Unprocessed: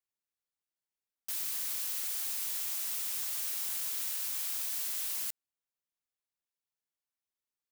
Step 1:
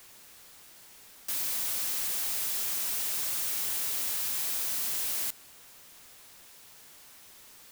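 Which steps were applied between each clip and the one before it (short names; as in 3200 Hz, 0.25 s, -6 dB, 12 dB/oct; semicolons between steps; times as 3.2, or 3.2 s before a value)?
power-law curve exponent 0.35; gain -3.5 dB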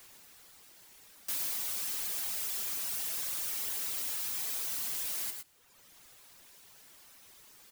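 reverb removal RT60 1.3 s; on a send: tapped delay 0.108/0.123 s -7.5/-11.5 dB; on the sum: gain -2 dB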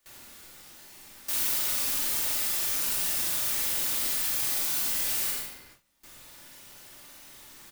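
doubler 46 ms -3.5 dB; shoebox room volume 1300 m³, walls mixed, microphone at 2.5 m; gate with hold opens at -42 dBFS; gain +2.5 dB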